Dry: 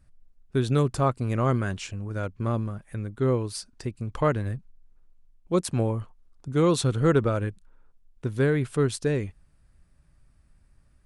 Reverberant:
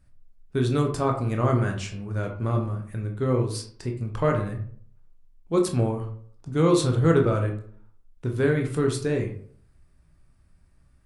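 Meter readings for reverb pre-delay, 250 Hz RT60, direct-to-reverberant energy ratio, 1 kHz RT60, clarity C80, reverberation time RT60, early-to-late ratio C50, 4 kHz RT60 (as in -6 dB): 16 ms, 0.65 s, 2.0 dB, 0.50 s, 12.5 dB, 0.55 s, 8.0 dB, 0.30 s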